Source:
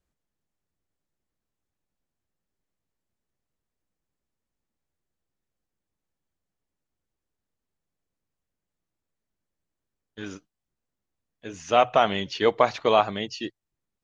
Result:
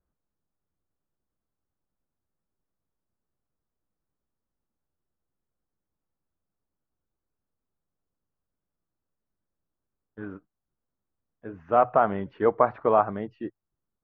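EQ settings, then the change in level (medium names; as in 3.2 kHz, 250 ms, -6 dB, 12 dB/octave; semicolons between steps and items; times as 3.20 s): Chebyshev low-pass 1.4 kHz, order 3; 0.0 dB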